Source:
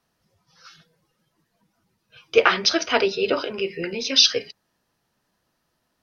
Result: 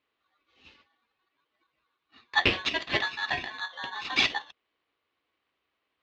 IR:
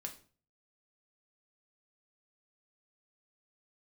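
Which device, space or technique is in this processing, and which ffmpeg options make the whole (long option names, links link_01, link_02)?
ring modulator pedal into a guitar cabinet: -filter_complex "[0:a]aeval=exprs='val(0)*sgn(sin(2*PI*1300*n/s))':channel_layout=same,highpass=75,equalizer=frequency=110:width_type=q:width=4:gain=-8,equalizer=frequency=180:width_type=q:width=4:gain=-10,equalizer=frequency=610:width_type=q:width=4:gain=-4,equalizer=frequency=890:width_type=q:width=4:gain=-4,equalizer=frequency=1500:width_type=q:width=4:gain=-8,lowpass=frequency=3600:width=0.5412,lowpass=frequency=3600:width=1.3066,asettb=1/sr,asplit=3[link_01][link_02][link_03];[link_01]atrim=end=2.374[link_04];[link_02]atrim=start=2.37:end=3.85,asetpts=PTS-STARTPTS,afade=type=in:duration=0.004:curve=qsin,afade=type=out:start_time=1.476:duration=0.004:curve=qsin,equalizer=frequency=890:width=6.6:gain=-8.5[link_05];[link_03]atrim=start=3.846[link_06];[link_04][link_05]acrossfade=duration=0.004:curve1=hsin:curve2=qsin[link_07];[link_07][link_06]acrossfade=duration=0.004:curve1=qsin:curve2=hsin,volume=-3.5dB"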